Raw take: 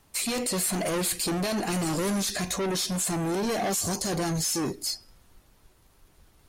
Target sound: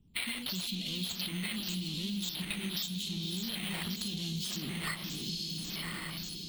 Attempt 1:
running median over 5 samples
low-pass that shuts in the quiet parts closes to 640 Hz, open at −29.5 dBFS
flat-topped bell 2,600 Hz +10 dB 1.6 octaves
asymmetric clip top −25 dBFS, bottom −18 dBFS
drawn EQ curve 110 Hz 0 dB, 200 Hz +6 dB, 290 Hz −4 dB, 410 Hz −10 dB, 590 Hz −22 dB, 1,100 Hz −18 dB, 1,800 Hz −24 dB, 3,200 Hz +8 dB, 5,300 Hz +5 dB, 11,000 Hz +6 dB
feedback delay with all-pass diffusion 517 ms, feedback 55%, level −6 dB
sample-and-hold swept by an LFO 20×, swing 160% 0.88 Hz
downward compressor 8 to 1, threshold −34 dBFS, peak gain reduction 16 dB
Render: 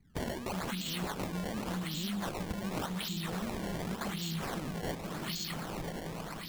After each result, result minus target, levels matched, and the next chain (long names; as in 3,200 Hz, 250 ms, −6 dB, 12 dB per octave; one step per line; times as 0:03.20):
asymmetric clip: distortion +8 dB; sample-and-hold swept by an LFO: distortion +5 dB
running median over 5 samples
low-pass that shuts in the quiet parts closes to 640 Hz, open at −29.5 dBFS
flat-topped bell 2,600 Hz +10 dB 1.6 octaves
asymmetric clip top −13.5 dBFS, bottom −18 dBFS
drawn EQ curve 110 Hz 0 dB, 200 Hz +6 dB, 290 Hz −4 dB, 410 Hz −10 dB, 590 Hz −22 dB, 1,100 Hz −18 dB, 1,800 Hz −24 dB, 3,200 Hz +8 dB, 5,300 Hz +5 dB, 11,000 Hz +6 dB
feedback delay with all-pass diffusion 517 ms, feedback 55%, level −6 dB
sample-and-hold swept by an LFO 20×, swing 160% 0.88 Hz
downward compressor 8 to 1, threshold −34 dBFS, peak gain reduction 17.5 dB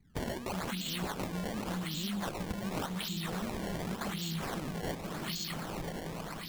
sample-and-hold swept by an LFO: distortion +6 dB
running median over 5 samples
low-pass that shuts in the quiet parts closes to 640 Hz, open at −29.5 dBFS
flat-topped bell 2,600 Hz +10 dB 1.6 octaves
asymmetric clip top −13.5 dBFS, bottom −18 dBFS
drawn EQ curve 110 Hz 0 dB, 200 Hz +6 dB, 290 Hz −4 dB, 410 Hz −10 dB, 590 Hz −22 dB, 1,100 Hz −18 dB, 1,800 Hz −24 dB, 3,200 Hz +8 dB, 5,300 Hz +5 dB, 11,000 Hz +6 dB
feedback delay with all-pass diffusion 517 ms, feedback 55%, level −6 dB
sample-and-hold swept by an LFO 4×, swing 160% 0.88 Hz
downward compressor 8 to 1, threshold −34 dBFS, peak gain reduction 17.5 dB